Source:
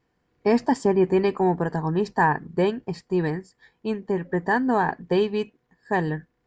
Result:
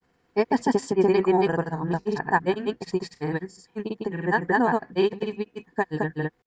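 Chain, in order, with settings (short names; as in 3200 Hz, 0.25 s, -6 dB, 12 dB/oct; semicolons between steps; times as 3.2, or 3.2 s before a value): low shelf 210 Hz -5.5 dB; notch 590 Hz, Q 12; in parallel at +2 dB: compressor, threshold -33 dBFS, peak gain reduction 16.5 dB; on the sum: grains, spray 0.187 s, pitch spread up and down by 0 st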